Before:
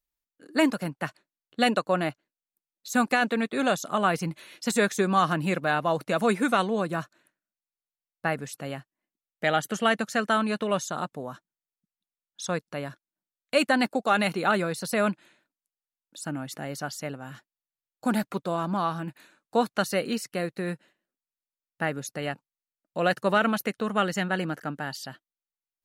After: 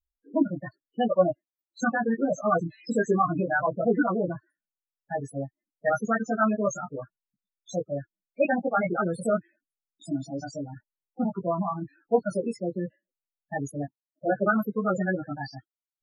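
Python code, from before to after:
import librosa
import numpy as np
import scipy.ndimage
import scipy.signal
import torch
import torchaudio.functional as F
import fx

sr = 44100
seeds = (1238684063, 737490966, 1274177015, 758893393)

y = fx.stretch_vocoder(x, sr, factor=0.62)
y = fx.spec_topn(y, sr, count=8)
y = fx.chorus_voices(y, sr, voices=6, hz=0.13, base_ms=16, depth_ms=1.9, mix_pct=50)
y = F.gain(torch.from_numpy(y), 6.0).numpy()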